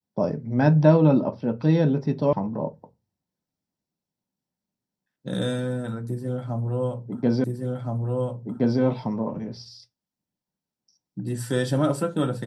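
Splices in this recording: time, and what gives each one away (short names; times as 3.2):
2.33 sound cut off
7.44 repeat of the last 1.37 s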